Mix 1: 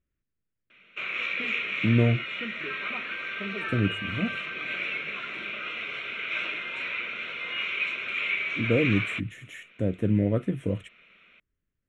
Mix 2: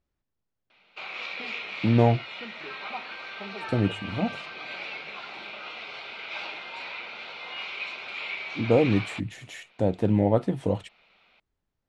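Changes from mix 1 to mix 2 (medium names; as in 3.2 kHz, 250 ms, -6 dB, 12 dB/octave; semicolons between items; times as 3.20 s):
background -7.0 dB; master: remove static phaser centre 2 kHz, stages 4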